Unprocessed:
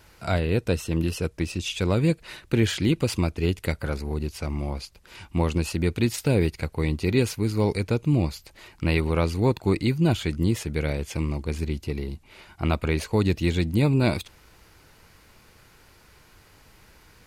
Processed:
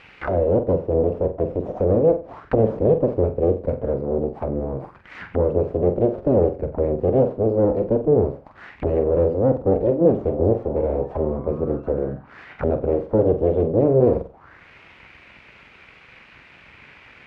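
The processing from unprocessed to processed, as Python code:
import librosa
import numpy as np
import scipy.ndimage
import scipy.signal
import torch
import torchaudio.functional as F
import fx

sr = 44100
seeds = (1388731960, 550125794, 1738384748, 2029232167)

p1 = np.clip(x, -10.0 ** (-26.5 / 20.0), 10.0 ** (-26.5 / 20.0))
p2 = x + (p1 * librosa.db_to_amplitude(-4.5))
p3 = fx.spec_paint(p2, sr, seeds[0], shape='rise', start_s=10.29, length_s=1.85, low_hz=570.0, high_hz=1600.0, level_db=-38.0)
p4 = np.abs(p3)
p5 = scipy.signal.sosfilt(scipy.signal.butter(2, 47.0, 'highpass', fs=sr, output='sos'), p4)
p6 = p5 + fx.room_flutter(p5, sr, wall_m=7.7, rt60_s=0.32, dry=0)
p7 = fx.envelope_lowpass(p6, sr, base_hz=510.0, top_hz=2700.0, q=3.5, full_db=-27.5, direction='down')
y = p7 * librosa.db_to_amplitude(3.0)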